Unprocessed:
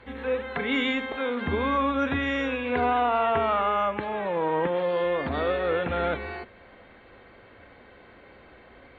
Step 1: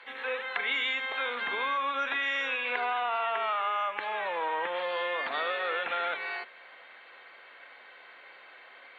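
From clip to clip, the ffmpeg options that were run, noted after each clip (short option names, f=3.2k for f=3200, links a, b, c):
-af "highpass=790,equalizer=f=2.9k:t=o:w=2.3:g=5.5,acompressor=threshold=-27dB:ratio=6"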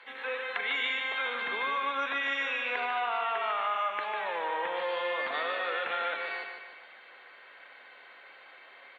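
-af "aecho=1:1:148|296|444|592|740|888:0.501|0.231|0.106|0.0488|0.0224|0.0103,volume=-2dB"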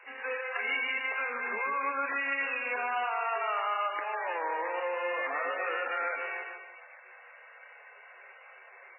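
-ar 11025 -c:a libmp3lame -b:a 8k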